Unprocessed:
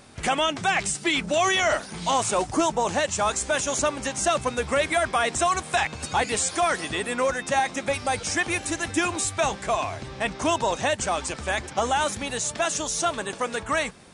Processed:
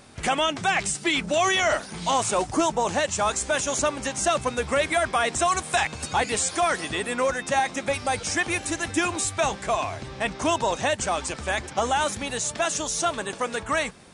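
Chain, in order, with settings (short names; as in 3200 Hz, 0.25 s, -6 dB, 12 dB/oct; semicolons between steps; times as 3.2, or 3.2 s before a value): 5.48–6.04 high shelf 8600 Hz +8.5 dB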